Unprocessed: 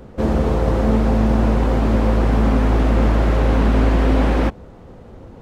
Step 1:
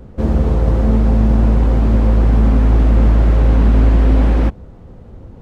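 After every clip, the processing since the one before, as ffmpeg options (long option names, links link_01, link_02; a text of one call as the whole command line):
ffmpeg -i in.wav -af "lowshelf=frequency=210:gain=10.5,volume=-4dB" out.wav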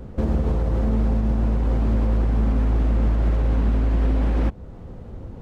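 ffmpeg -i in.wav -af "alimiter=limit=-13dB:level=0:latency=1:release=293" out.wav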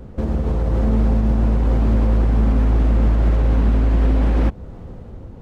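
ffmpeg -i in.wav -af "dynaudnorm=framelen=110:gausssize=11:maxgain=4dB" out.wav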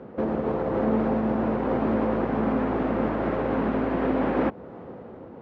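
ffmpeg -i in.wav -af "highpass=290,lowpass=2000,volume=3.5dB" out.wav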